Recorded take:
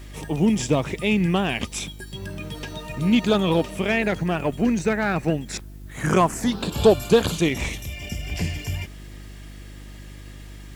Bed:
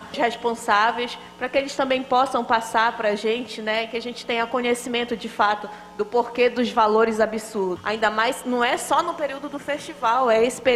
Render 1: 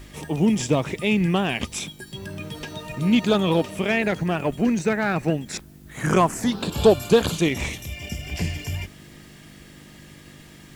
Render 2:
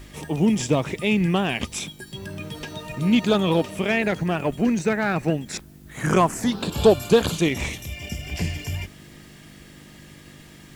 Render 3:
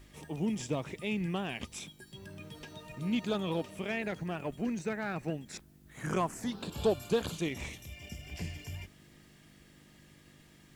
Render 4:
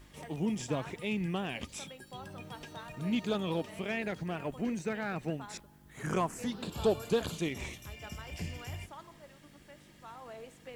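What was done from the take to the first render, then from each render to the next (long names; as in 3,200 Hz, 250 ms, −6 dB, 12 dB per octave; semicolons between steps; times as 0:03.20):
hum removal 50 Hz, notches 2
no processing that can be heard
level −13 dB
mix in bed −29.5 dB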